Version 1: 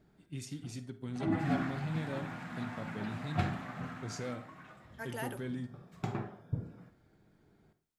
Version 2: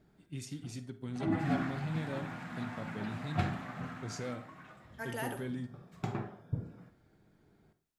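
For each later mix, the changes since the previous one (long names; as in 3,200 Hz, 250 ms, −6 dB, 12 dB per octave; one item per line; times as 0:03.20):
second voice: send +11.0 dB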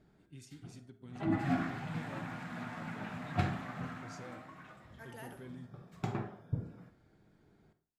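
first voice −10.0 dB
second voice −11.0 dB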